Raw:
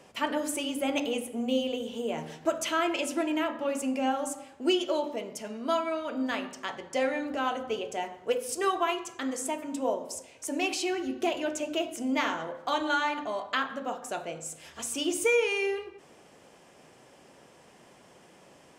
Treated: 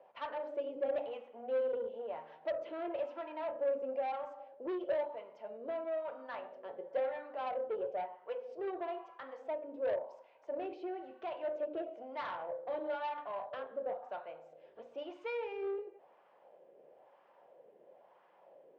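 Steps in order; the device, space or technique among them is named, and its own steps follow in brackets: wah-wah guitar rig (wah 1 Hz 440–1100 Hz, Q 2.5; tube stage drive 32 dB, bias 0.25; speaker cabinet 95–4300 Hz, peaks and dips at 260 Hz -6 dB, 550 Hz +7 dB, 1200 Hz -4 dB); gain -1.5 dB

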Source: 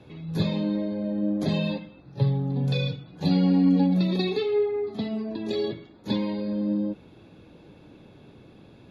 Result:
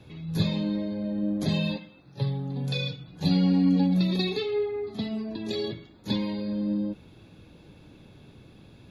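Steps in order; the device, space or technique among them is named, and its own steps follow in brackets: smiley-face EQ (low shelf 150 Hz +5 dB; bell 450 Hz -4.5 dB 2.9 oct; high shelf 5000 Hz +6.5 dB); 1.76–3 HPF 240 Hz 6 dB/oct

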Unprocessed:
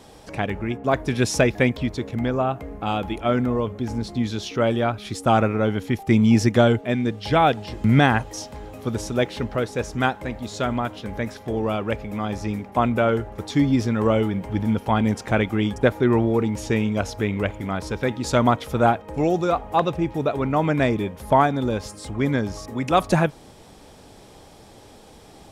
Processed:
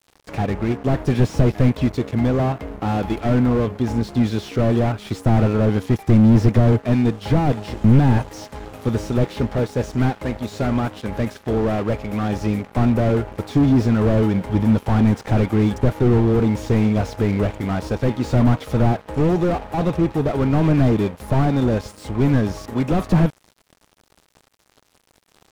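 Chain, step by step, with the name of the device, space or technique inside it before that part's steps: early transistor amplifier (crossover distortion -41 dBFS; slew limiter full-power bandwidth 29 Hz); gain +7 dB

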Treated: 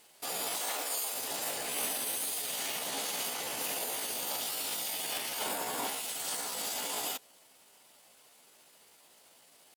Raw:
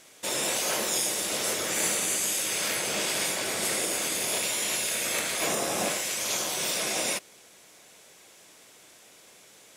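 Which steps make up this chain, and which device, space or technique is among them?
0.61–1.14 HPF 160 Hz -> 380 Hz 12 dB/oct; chipmunk voice (pitch shift +5 st); gain -6.5 dB

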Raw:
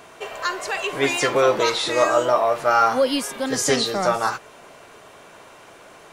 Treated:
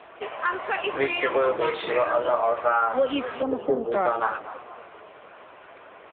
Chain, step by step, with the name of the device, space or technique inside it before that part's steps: 3.42–3.92 inverse Chebyshev low-pass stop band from 3400 Hz, stop band 60 dB; frequency-shifting echo 0.234 s, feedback 45%, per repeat -40 Hz, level -16.5 dB; voicemail (BPF 310–2800 Hz; compressor 8:1, threshold -20 dBFS, peak gain reduction 8 dB; gain +2.5 dB; AMR-NB 6.7 kbps 8000 Hz)

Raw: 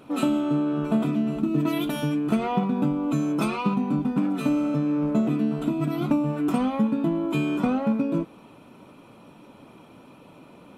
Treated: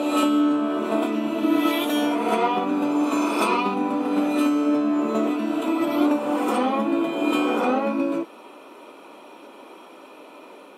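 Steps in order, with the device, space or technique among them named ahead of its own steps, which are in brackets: ghost voice (reverse; reverb RT60 2.4 s, pre-delay 3 ms, DRR 0.5 dB; reverse; HPF 330 Hz 24 dB/oct); gain +5 dB

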